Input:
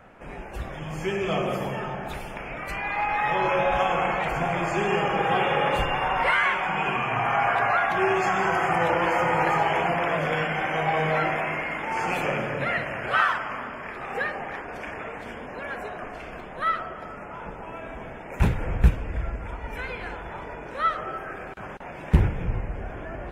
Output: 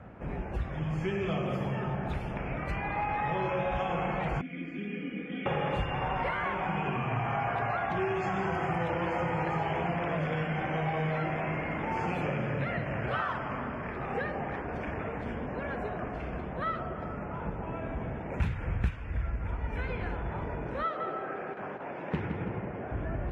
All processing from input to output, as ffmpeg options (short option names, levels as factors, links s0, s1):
-filter_complex "[0:a]asettb=1/sr,asplit=3[s0][s1][s2];[s0]atrim=end=4.414[s3];[s1]atrim=start=4.41:end=5.46,asetpts=PTS-STARTPTS,afade=t=in:d=0.004:c=qsin,afade=t=out:st=1.046:d=0.004:c=qsin,asplit=3[s4][s5][s6];[s4]bandpass=f=270:t=q:w=8,volume=1[s7];[s5]bandpass=f=2290:t=q:w=8,volume=0.501[s8];[s6]bandpass=f=3010:t=q:w=8,volume=0.355[s9];[s7][s8][s9]amix=inputs=3:normalize=0,aecho=1:1:4.1:0.89,atrim=end_sample=46305[s10];[s2]atrim=start=5.456[s11];[s3][s10]acrossfade=d=0.004:c1=hsin:c2=qsin[s12];[s12][s11]acrossfade=d=0.004:c1=qsin:c2=hsin,asettb=1/sr,asplit=3[s13][s14][s15];[s13]atrim=end=20.834[s16];[s14]atrim=start=20.83:end=22.92,asetpts=PTS-STARTPTS,afade=t=in:d=0.004:c=qsin,afade=t=out:st=2.086:d=0.004:c=qsin,highpass=290,lowpass=5300,asplit=2[s17][s18];[s18]adelay=165,lowpass=f=4200:p=1,volume=0.422,asplit=2[s19][s20];[s20]adelay=165,lowpass=f=4200:p=1,volume=0.43,asplit=2[s21][s22];[s22]adelay=165,lowpass=f=4200:p=1,volume=0.43,asplit=2[s23][s24];[s24]adelay=165,lowpass=f=4200:p=1,volume=0.43,asplit=2[s25][s26];[s26]adelay=165,lowpass=f=4200:p=1,volume=0.43[s27];[s17][s19][s21][s23][s25][s27]amix=inputs=6:normalize=0,atrim=end_sample=92169[s28];[s15]atrim=start=22.916[s29];[s16][s28]acrossfade=d=0.004:c1=hsin:c2=qsin[s30];[s30][s29]acrossfade=d=0.004:c1=qsin:c2=hsin,highpass=76,aemphasis=mode=reproduction:type=riaa,acrossover=split=1100|2200[s31][s32][s33];[s31]acompressor=threshold=0.0398:ratio=4[s34];[s32]acompressor=threshold=0.00891:ratio=4[s35];[s33]acompressor=threshold=0.00891:ratio=4[s36];[s34][s35][s36]amix=inputs=3:normalize=0,volume=0.794"